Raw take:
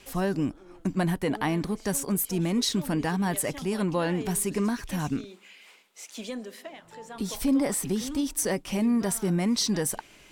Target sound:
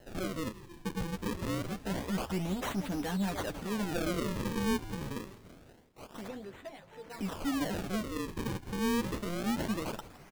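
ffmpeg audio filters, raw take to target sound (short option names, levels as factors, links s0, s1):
-filter_complex "[0:a]asplit=3[s0][s1][s2];[s0]afade=t=out:st=1.29:d=0.02[s3];[s1]afreqshift=-41,afade=t=in:st=1.29:d=0.02,afade=t=out:st=1.71:d=0.02[s4];[s2]afade=t=in:st=1.71:d=0.02[s5];[s3][s4][s5]amix=inputs=3:normalize=0,asettb=1/sr,asplit=3[s6][s7][s8];[s6]atrim=end=3.914[s9];[s7]atrim=start=3.91:end=4.78,asetpts=PTS-STARTPTS,afade=t=in:d=0.004:c=qsin,afade=t=out:st=0.866:d=0.004:c=qsin,equalizer=f=230:t=o:w=2.8:g=11.5[s10];[s8]atrim=start=4.776[s11];[s9][s10]acrossfade=d=0.004:c1=hsin:c2=qsin[s12];[s12][s11]acrossfade=d=0.004:c1=qsin:c2=hsin,asoftclip=type=tanh:threshold=0.0473,flanger=delay=8.7:depth=2:regen=21:speed=0.22:shape=sinusoidal,acrusher=samples=37:mix=1:aa=0.000001:lfo=1:lforange=59.2:lforate=0.26,asettb=1/sr,asplit=3[s13][s14][s15];[s13]atrim=end=6.284[s16];[s14]atrim=start=6.28:end=7.1,asetpts=PTS-STARTPTS,afade=t=in:d=0.004:c=qsin,afade=t=out:st=0.816:d=0.004:c=qsin,highshelf=f=4600:g=-11[s17];[s15]atrim=start=7.096[s18];[s16][s17]acrossfade=d=0.004:c1=hsin:c2=qsin[s19];[s19][s18]acrossfade=d=0.004:c1=qsin:c2=hsin,asplit=6[s20][s21][s22][s23][s24][s25];[s21]adelay=166,afreqshift=-120,volume=0.15[s26];[s22]adelay=332,afreqshift=-240,volume=0.0794[s27];[s23]adelay=498,afreqshift=-360,volume=0.0422[s28];[s24]adelay=664,afreqshift=-480,volume=0.0224[s29];[s25]adelay=830,afreqshift=-600,volume=0.0117[s30];[s20][s26][s27][s28][s29][s30]amix=inputs=6:normalize=0"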